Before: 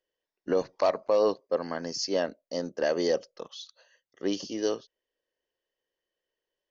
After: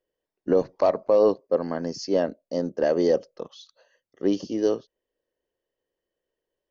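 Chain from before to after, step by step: tilt shelf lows +6.5 dB; trim +1.5 dB

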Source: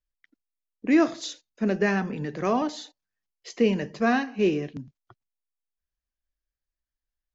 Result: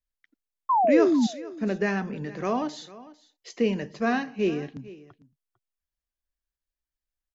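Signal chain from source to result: painted sound fall, 0.69–1.27 s, 210–1100 Hz -18 dBFS; delay 450 ms -19 dB; trim -2.5 dB

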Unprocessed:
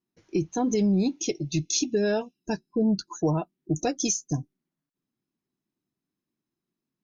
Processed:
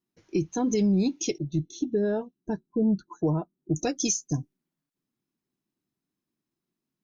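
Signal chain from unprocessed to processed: dynamic bell 710 Hz, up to -4 dB, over -43 dBFS, Q 2.1; 1.38–3.72 s: boxcar filter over 18 samples

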